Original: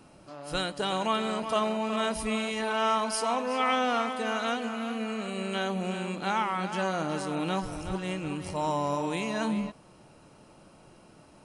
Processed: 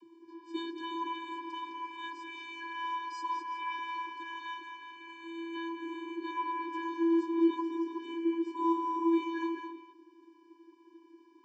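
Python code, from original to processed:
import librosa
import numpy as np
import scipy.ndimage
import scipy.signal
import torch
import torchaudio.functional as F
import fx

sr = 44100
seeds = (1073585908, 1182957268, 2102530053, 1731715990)

y = fx.peak_eq(x, sr, hz=6200.0, db=-5.5, octaves=0.39)
y = fx.vocoder(y, sr, bands=32, carrier='square', carrier_hz=333.0)
y = y + 10.0 ** (-8.0 / 20.0) * np.pad(y, (int(209 * sr / 1000.0), 0))[:len(y)]
y = y * 10.0 ** (-3.5 / 20.0)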